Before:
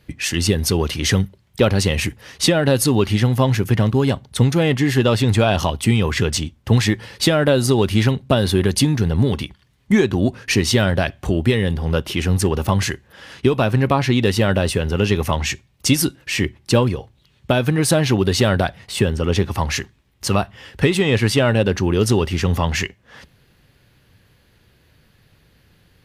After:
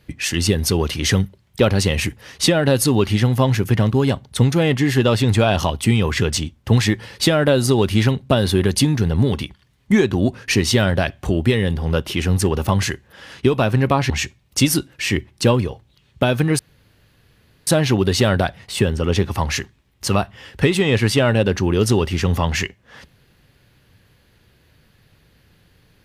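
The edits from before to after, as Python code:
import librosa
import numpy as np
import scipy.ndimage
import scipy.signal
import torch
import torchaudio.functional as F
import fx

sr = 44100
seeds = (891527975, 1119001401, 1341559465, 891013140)

y = fx.edit(x, sr, fx.cut(start_s=14.1, length_s=1.28),
    fx.insert_room_tone(at_s=17.87, length_s=1.08), tone=tone)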